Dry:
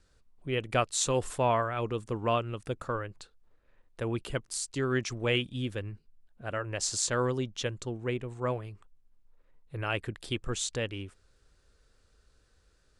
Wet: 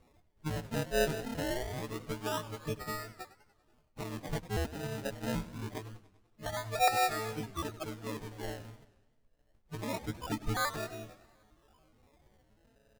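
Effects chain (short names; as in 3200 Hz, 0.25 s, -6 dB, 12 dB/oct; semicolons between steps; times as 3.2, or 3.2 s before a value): frequency quantiser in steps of 6 st; dynamic EQ 300 Hz, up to -4 dB, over -41 dBFS, Q 0.91; in parallel at +2 dB: compressor, threshold -35 dBFS, peak gain reduction 20.5 dB; 6.46–6.88 on the sum: comb 1.3 ms, depth 93%; harmonic-percussive split harmonic -13 dB; downsampling 32000 Hz; decimation with a swept rate 27×, swing 100% 0.25 Hz; warbling echo 97 ms, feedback 56%, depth 195 cents, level -16 dB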